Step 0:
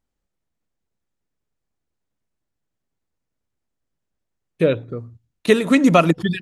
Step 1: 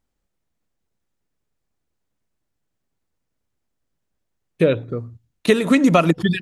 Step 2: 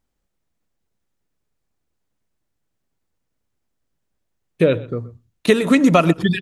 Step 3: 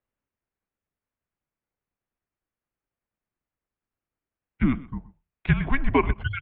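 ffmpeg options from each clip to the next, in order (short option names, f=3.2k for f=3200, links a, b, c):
-af "acompressor=threshold=-15dB:ratio=2.5,volume=3dB"
-af "aecho=1:1:126:0.1,volume=1dB"
-af "highpass=f=230:t=q:w=0.5412,highpass=f=230:t=q:w=1.307,lowpass=f=3k:t=q:w=0.5176,lowpass=f=3k:t=q:w=0.7071,lowpass=f=3k:t=q:w=1.932,afreqshift=-280,volume=-5.5dB"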